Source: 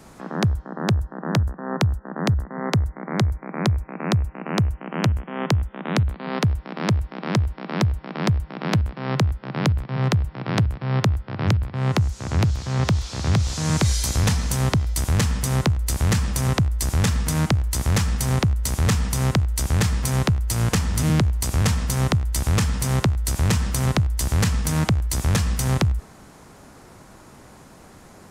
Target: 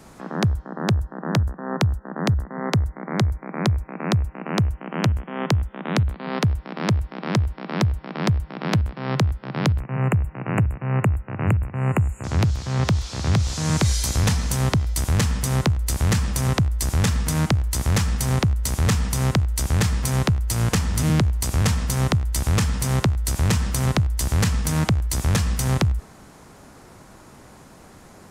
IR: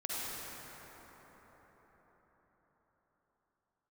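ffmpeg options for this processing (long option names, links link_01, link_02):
-filter_complex "[0:a]asettb=1/sr,asplit=3[link_01][link_02][link_03];[link_01]atrim=end=9.804[link_04];[link_02]atrim=start=9.8:end=12.24,asetpts=PTS-STARTPTS,afade=type=in:duration=0.004:curve=qsin,afade=type=out:start_time=2.436:duration=0.004:curve=qsin,asuperstop=centerf=4500:order=20:qfactor=1.1[link_05];[link_03]atrim=start=12.236[link_06];[link_04][link_05]acrossfade=duration=0.004:curve1=hsin:curve2=qsin[link_07];[link_07][link_06]acrossfade=duration=0.004:curve1=qsin:curve2=hsin"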